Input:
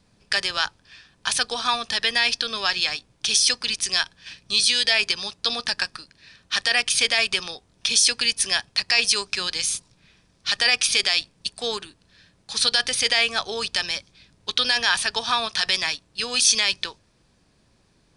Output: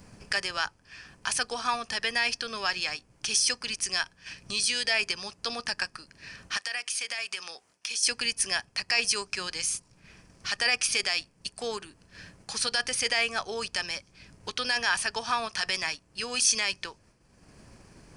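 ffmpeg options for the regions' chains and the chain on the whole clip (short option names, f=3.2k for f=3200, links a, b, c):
-filter_complex "[0:a]asettb=1/sr,asplit=3[a][b][c];[a]atrim=end=6.574[d];[b]atrim=start=6.57:end=8.03,asetpts=PTS-STARTPTS,afade=t=in:d=0.004:c=qsin,afade=t=out:st=1.456:d=0.004:c=qsin,highpass=f=1.1k:p=1,acompressor=threshold=-22dB:ratio=4:attack=3.2:release=140:knee=1:detection=peak[e];[c]atrim=start=8.026[f];[d][e]acrossfade=d=0.004:c1=hsin:c2=qsin[g];[g][f]acrossfade=d=0.004:c1=qsin:c2=hsin,agate=range=-33dB:threshold=-53dB:ratio=3:detection=peak,equalizer=f=3.7k:t=o:w=0.35:g=-14,acompressor=mode=upward:threshold=-28dB:ratio=2.5,volume=-4dB"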